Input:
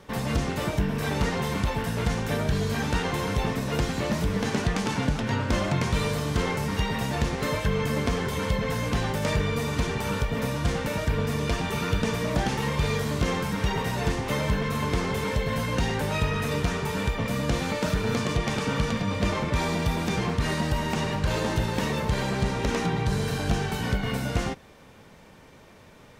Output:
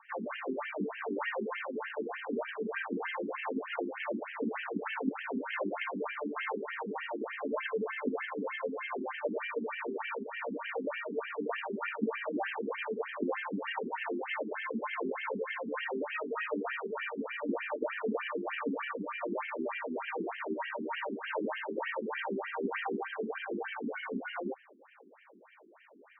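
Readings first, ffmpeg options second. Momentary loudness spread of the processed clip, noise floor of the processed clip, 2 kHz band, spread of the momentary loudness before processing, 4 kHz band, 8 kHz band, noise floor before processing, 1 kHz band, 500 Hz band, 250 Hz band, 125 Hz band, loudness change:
3 LU, −59 dBFS, −5.5 dB, 2 LU, −14.5 dB, below −40 dB, −51 dBFS, −7.5 dB, −6.0 dB, −9.5 dB, below −25 dB, −9.5 dB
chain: -af "afftfilt=real='re*between(b*sr/1024,280*pow(2300/280,0.5+0.5*sin(2*PI*3.3*pts/sr))/1.41,280*pow(2300/280,0.5+0.5*sin(2*PI*3.3*pts/sr))*1.41)':imag='im*between(b*sr/1024,280*pow(2300/280,0.5+0.5*sin(2*PI*3.3*pts/sr))/1.41,280*pow(2300/280,0.5+0.5*sin(2*PI*3.3*pts/sr))*1.41)':win_size=1024:overlap=0.75"

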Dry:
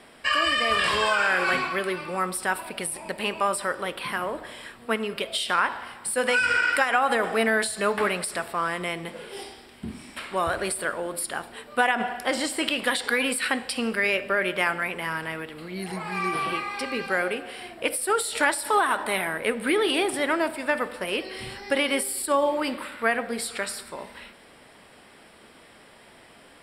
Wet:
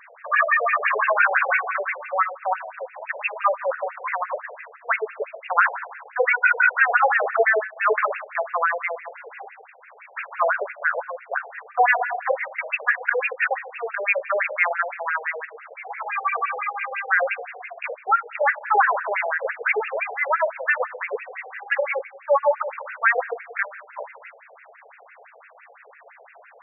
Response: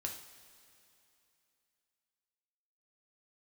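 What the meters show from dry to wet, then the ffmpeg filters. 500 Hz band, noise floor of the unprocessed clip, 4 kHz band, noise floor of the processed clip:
+1.5 dB, −52 dBFS, below −20 dB, −50 dBFS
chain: -filter_complex "[0:a]asplit=2[link_01][link_02];[1:a]atrim=start_sample=2205,asetrate=88200,aresample=44100[link_03];[link_02][link_03]afir=irnorm=-1:irlink=0,volume=-2dB[link_04];[link_01][link_04]amix=inputs=2:normalize=0,acontrast=28,afftfilt=real='re*between(b*sr/1024,570*pow(2000/570,0.5+0.5*sin(2*PI*5.9*pts/sr))/1.41,570*pow(2000/570,0.5+0.5*sin(2*PI*5.9*pts/sr))*1.41)':imag='im*between(b*sr/1024,570*pow(2000/570,0.5+0.5*sin(2*PI*5.9*pts/sr))/1.41,570*pow(2000/570,0.5+0.5*sin(2*PI*5.9*pts/sr))*1.41)':win_size=1024:overlap=0.75,volume=1.5dB"

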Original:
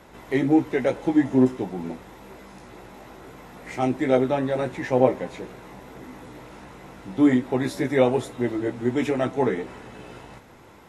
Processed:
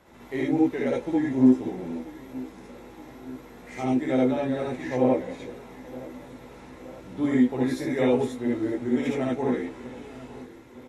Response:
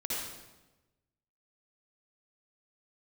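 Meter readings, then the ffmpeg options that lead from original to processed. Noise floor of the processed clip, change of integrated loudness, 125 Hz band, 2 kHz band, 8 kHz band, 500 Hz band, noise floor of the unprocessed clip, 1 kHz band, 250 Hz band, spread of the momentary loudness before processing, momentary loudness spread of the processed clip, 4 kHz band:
−47 dBFS, −2.0 dB, −4.0 dB, −4.0 dB, can't be measured, −3.5 dB, −49 dBFS, −5.0 dB, −0.5 dB, 21 LU, 21 LU, −3.5 dB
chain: -filter_complex "[0:a]aecho=1:1:919|1838|2757|3676|4595:0.112|0.064|0.0365|0.0208|0.0118[link_01];[1:a]atrim=start_sample=2205,atrim=end_sample=3528[link_02];[link_01][link_02]afir=irnorm=-1:irlink=0,volume=-5dB"

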